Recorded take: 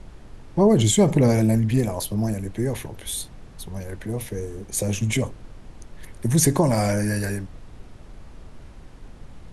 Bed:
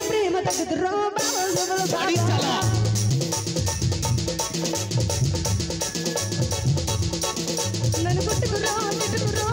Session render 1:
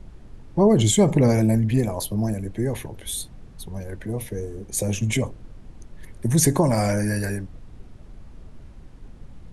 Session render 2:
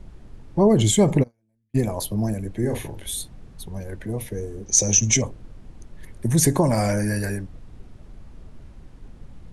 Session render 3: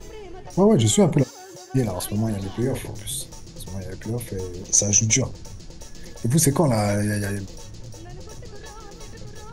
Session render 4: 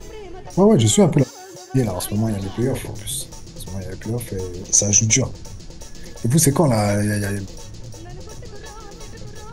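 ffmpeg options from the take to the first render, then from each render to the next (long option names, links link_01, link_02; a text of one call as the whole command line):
ffmpeg -i in.wav -af "afftdn=noise_reduction=6:noise_floor=-44" out.wav
ffmpeg -i in.wav -filter_complex "[0:a]asplit=3[link_01][link_02][link_03];[link_01]afade=type=out:start_time=1.22:duration=0.02[link_04];[link_02]agate=range=-52dB:threshold=-12dB:ratio=16:release=100:detection=peak,afade=type=in:start_time=1.22:duration=0.02,afade=type=out:start_time=1.74:duration=0.02[link_05];[link_03]afade=type=in:start_time=1.74:duration=0.02[link_06];[link_04][link_05][link_06]amix=inputs=3:normalize=0,asettb=1/sr,asplit=3[link_07][link_08][link_09];[link_07]atrim=end=2.594[link_10];[link_08]atrim=start=2.59:end=3.06,asetpts=PTS-STARTPTS,afade=type=in:duration=0.004:curve=qsin,afade=type=out:start_time=0.466:duration=0.004:curve=qsin,asplit=2[link_11][link_12];[link_12]adelay=42,volume=-5.5dB[link_13];[link_11][link_13]amix=inputs=2:normalize=0,atrim=end_sample=20727[link_14];[link_09]atrim=start=3.056[link_15];[link_10][link_14]acrossfade=duration=0.004:curve1=hsin:curve2=qsin[link_16];[link_16][link_15]acrossfade=duration=0.004:curve1=qsin:curve2=hsin,asettb=1/sr,asplit=3[link_17][link_18][link_19];[link_17]atrim=end=4.664[link_20];[link_18]atrim=start=4.66:end=5.22,asetpts=PTS-STARTPTS,afade=type=in:duration=0.004:curve=qsin,afade=type=out:start_time=0.556:duration=0.004:curve=qsin,lowpass=frequency=6000:width_type=q:width=15[link_21];[link_19]atrim=start=5.216[link_22];[link_20][link_21]acrossfade=duration=0.004:curve1=hsin:curve2=qsin[link_23];[link_23][link_22]acrossfade=duration=0.004:curve1=qsin:curve2=hsin" out.wav
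ffmpeg -i in.wav -i bed.wav -filter_complex "[1:a]volume=-18dB[link_01];[0:a][link_01]amix=inputs=2:normalize=0" out.wav
ffmpeg -i in.wav -af "volume=3dB,alimiter=limit=-1dB:level=0:latency=1" out.wav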